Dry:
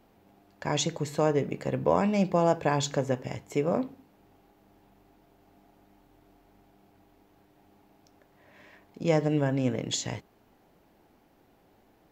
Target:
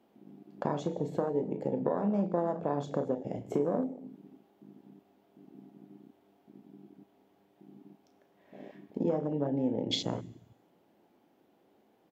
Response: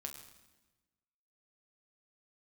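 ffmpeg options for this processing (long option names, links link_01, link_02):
-filter_complex "[0:a]highpass=220,tiltshelf=frequency=680:gain=4.5,acompressor=threshold=-40dB:ratio=6,asplit=2[link_01][link_02];[link_02]adelay=35,volume=-10dB[link_03];[link_01][link_03]amix=inputs=2:normalize=0,asplit=2[link_04][link_05];[1:a]atrim=start_sample=2205[link_06];[link_05][link_06]afir=irnorm=-1:irlink=0,volume=5.5dB[link_07];[link_04][link_07]amix=inputs=2:normalize=0,afwtdn=0.01,equalizer=frequency=3200:width=2.9:gain=4.5,volume=4.5dB"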